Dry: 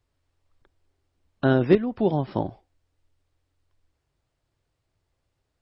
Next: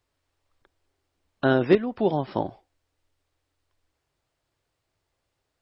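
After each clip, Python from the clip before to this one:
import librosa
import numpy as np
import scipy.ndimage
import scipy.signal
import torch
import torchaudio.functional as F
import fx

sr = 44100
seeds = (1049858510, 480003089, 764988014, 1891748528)

y = fx.low_shelf(x, sr, hz=240.0, db=-9.5)
y = F.gain(torch.from_numpy(y), 2.5).numpy()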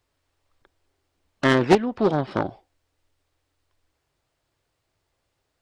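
y = fx.self_delay(x, sr, depth_ms=0.57)
y = F.gain(torch.from_numpy(y), 3.0).numpy()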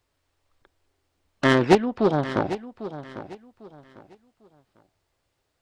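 y = fx.echo_feedback(x, sr, ms=799, feedback_pct=27, wet_db=-13.5)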